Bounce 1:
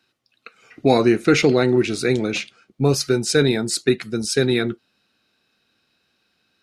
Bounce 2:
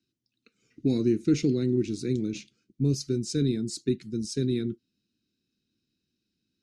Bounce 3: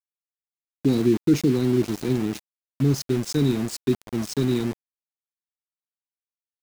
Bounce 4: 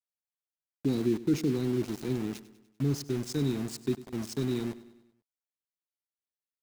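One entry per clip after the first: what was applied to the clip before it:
EQ curve 320 Hz 0 dB, 750 Hz -29 dB, 6400 Hz -5 dB, 12000 Hz -16 dB; gain -5 dB
sample gate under -34 dBFS; gain +4.5 dB
feedback echo 98 ms, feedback 53%, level -17 dB; gain -8 dB

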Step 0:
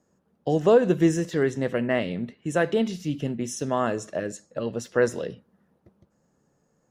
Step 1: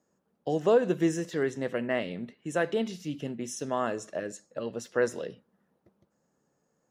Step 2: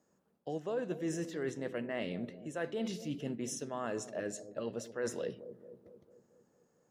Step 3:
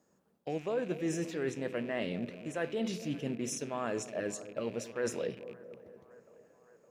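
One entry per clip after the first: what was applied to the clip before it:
low shelf 130 Hz -11 dB; gain -4 dB
reverse; compressor 6:1, threshold -34 dBFS, peak gain reduction 15 dB; reverse; analogue delay 0.224 s, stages 1024, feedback 59%, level -12.5 dB
rattling part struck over -53 dBFS, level -45 dBFS; band-limited delay 0.564 s, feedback 69%, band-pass 870 Hz, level -20.5 dB; gain +2.5 dB

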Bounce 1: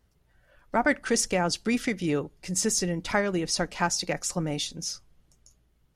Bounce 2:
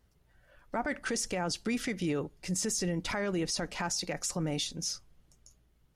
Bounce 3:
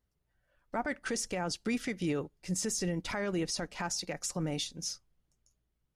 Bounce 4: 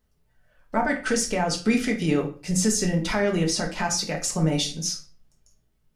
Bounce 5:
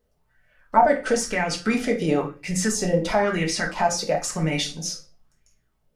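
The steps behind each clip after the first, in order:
limiter -22 dBFS, peak gain reduction 11 dB; gain -1 dB
upward expander 1.5:1, over -54 dBFS
reverb RT60 0.40 s, pre-delay 5 ms, DRR 1.5 dB; gain +7.5 dB
LFO bell 1 Hz 480–2300 Hz +14 dB; gain -2 dB

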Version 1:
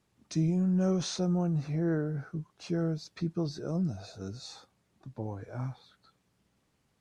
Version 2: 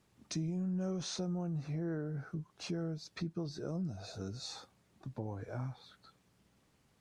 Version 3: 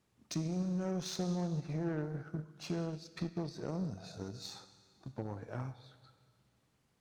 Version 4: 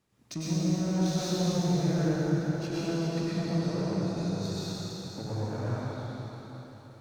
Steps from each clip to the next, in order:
compressor 2.5:1, threshold -42 dBFS, peak gain reduction 12 dB; gain +2.5 dB
Schroeder reverb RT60 1.9 s, combs from 26 ms, DRR 9.5 dB; added harmonics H 7 -23 dB, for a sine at -25.5 dBFS; gain +1 dB
plate-style reverb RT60 4.2 s, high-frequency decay 0.95×, pre-delay 85 ms, DRR -9 dB

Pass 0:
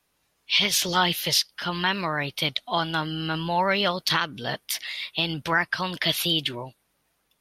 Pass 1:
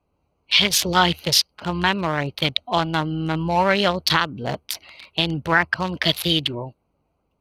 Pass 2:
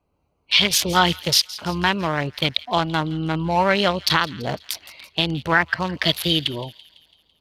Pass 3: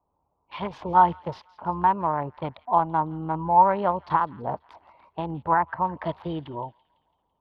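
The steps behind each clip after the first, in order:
Wiener smoothing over 25 samples; bell 78 Hz +13 dB 0.36 oct; gain +6 dB
thin delay 0.167 s, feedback 54%, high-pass 2200 Hz, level -17 dB
synth low-pass 940 Hz, resonance Q 4.9; gain -8 dB

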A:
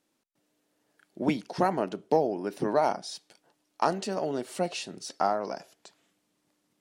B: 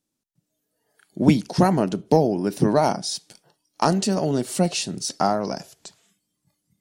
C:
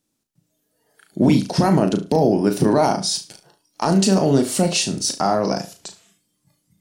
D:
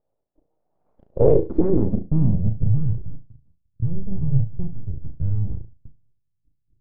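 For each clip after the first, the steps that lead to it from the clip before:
tone controls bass +14 dB, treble +15 dB; spectral noise reduction 15 dB; high shelf 4600 Hz -6.5 dB; gain +4.5 dB
limiter -12.5 dBFS, peak gain reduction 11 dB; on a send: flutter echo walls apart 6.2 m, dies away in 0.28 s; on the sum: gain +5.5 dB
full-wave rectifier; companded quantiser 8-bit; low-pass sweep 660 Hz -> 120 Hz, 0.89–2.7

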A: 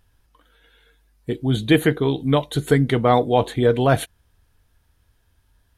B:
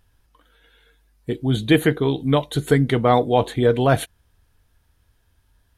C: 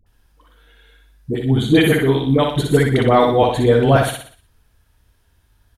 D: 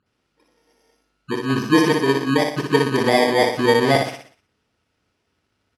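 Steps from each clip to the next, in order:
nothing audible
dispersion highs, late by 65 ms, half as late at 560 Hz; on a send: feedback echo 60 ms, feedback 44%, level -4 dB; on the sum: gain +2.5 dB
FFT order left unsorted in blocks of 32 samples; BPF 220–4200 Hz

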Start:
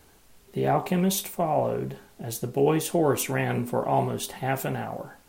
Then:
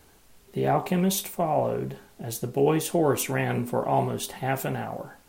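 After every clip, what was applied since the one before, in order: nothing audible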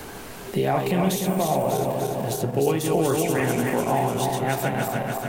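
regenerating reverse delay 0.148 s, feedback 69%, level -3.5 dB; three-band squash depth 70%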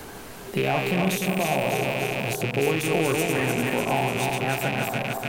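rattling part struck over -33 dBFS, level -16 dBFS; gain -2 dB

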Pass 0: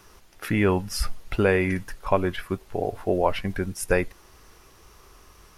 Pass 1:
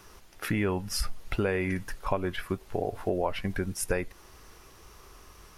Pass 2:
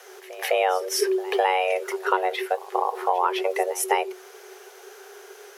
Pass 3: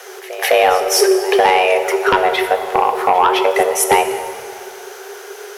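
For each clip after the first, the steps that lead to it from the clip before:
compressor 3:1, threshold -26 dBFS, peak gain reduction 9 dB
frequency shift +370 Hz; reverse echo 0.207 s -18.5 dB; gain +6 dB
sine folder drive 8 dB, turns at -4 dBFS; plate-style reverb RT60 2.3 s, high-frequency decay 0.75×, DRR 7 dB; gain -1 dB

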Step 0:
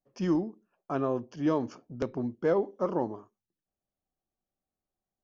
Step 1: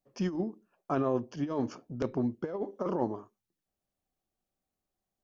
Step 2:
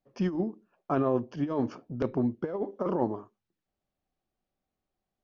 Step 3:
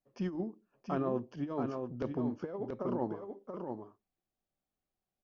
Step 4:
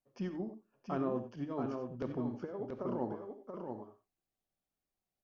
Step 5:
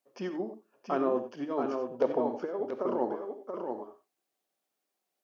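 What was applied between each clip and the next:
negative-ratio compressor -29 dBFS, ratio -0.5
air absorption 150 m; gain +3 dB
echo 0.681 s -5.5 dB; gain -7 dB
non-linear reverb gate 0.11 s rising, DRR 8.5 dB; gain -2.5 dB
spectral gain 1.94–2.42, 430–1000 Hz +8 dB; Chebyshev high-pass 380 Hz, order 2; gain +8.5 dB

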